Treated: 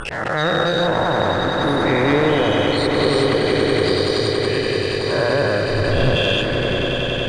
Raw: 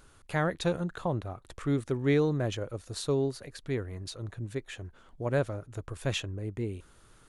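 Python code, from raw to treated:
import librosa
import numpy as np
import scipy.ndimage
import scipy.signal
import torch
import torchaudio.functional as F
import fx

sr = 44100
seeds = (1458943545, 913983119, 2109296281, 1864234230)

y = fx.spec_dilate(x, sr, span_ms=480)
y = fx.tilt_eq(y, sr, slope=-3.5, at=(5.66, 6.16))
y = fx.spec_topn(y, sr, count=64)
y = fx.auto_swell(y, sr, attack_ms=192.0)
y = fx.leveller(y, sr, passes=2)
y = scipy.signal.sosfilt(scipy.signal.butter(4, 9900.0, 'lowpass', fs=sr, output='sos'), y)
y = fx.low_shelf(y, sr, hz=390.0, db=-5.5)
y = fx.hum_notches(y, sr, base_hz=60, count=7)
y = fx.echo_swell(y, sr, ms=94, loudest=8, wet_db=-11.0)
y = fx.pre_swell(y, sr, db_per_s=25.0)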